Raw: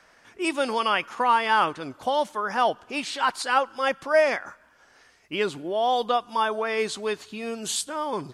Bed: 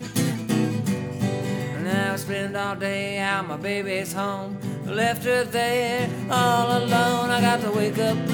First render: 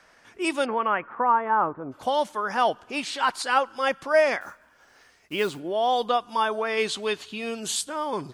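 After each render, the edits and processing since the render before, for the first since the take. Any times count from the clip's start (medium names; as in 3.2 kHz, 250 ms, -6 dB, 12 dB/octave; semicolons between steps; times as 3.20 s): 0.64–1.91 s: low-pass 2.2 kHz -> 1.1 kHz 24 dB/octave; 4.41–5.60 s: block-companded coder 5-bit; 6.77–7.60 s: peaking EQ 3.1 kHz +7 dB 0.72 oct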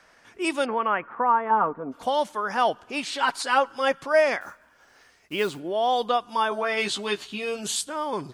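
1.50–2.05 s: comb 4.3 ms; 3.11–4.06 s: comb 7.2 ms, depth 49%; 6.50–7.67 s: doubling 15 ms -3.5 dB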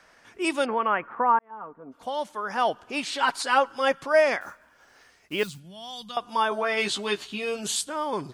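1.39–2.93 s: fade in; 5.43–6.17 s: FFT filter 190 Hz 0 dB, 340 Hz -27 dB, 550 Hz -23 dB, 5.5 kHz 0 dB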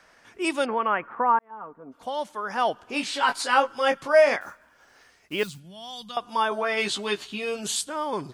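2.86–4.36 s: doubling 21 ms -5.5 dB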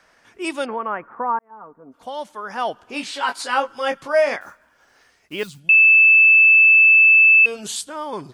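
0.76–1.94 s: peaking EQ 3.2 kHz -10.5 dB 1.3 oct; 3.11–3.67 s: high-pass 320 Hz -> 78 Hz 24 dB/octave; 5.69–7.46 s: bleep 2.63 kHz -8 dBFS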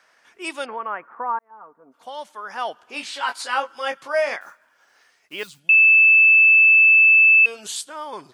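low-pass 1.1 kHz 6 dB/octave; tilt EQ +5 dB/octave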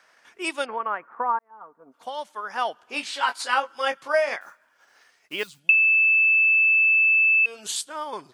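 compression 6:1, threshold -17 dBFS, peak gain reduction 6 dB; transient shaper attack +3 dB, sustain -3 dB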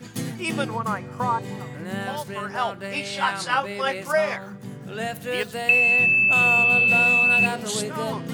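add bed -7 dB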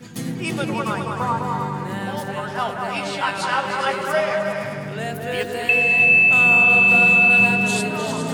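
delay with an opening low-pass 102 ms, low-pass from 400 Hz, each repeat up 2 oct, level 0 dB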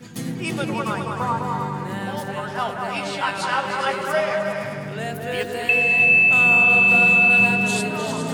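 trim -1 dB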